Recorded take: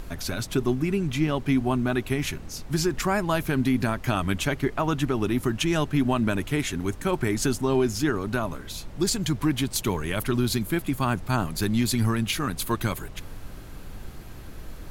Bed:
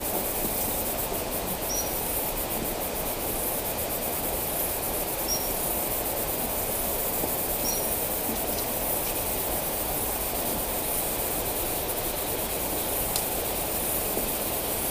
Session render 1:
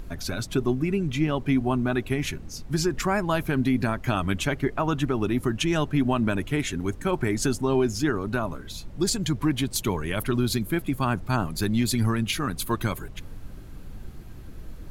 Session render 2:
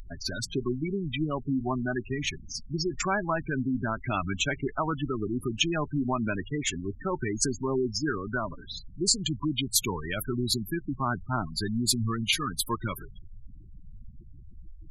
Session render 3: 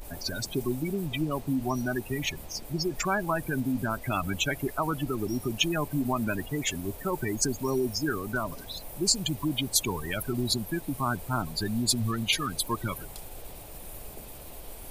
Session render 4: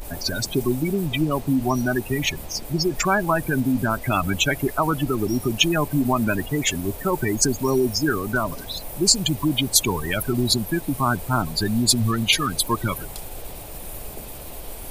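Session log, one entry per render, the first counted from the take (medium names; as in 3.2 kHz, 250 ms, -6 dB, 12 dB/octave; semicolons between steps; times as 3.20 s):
noise reduction 7 dB, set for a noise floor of -41 dBFS
spectral gate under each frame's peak -15 dB strong; tilt shelf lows -6 dB, about 1.3 kHz
add bed -17.5 dB
trim +7.5 dB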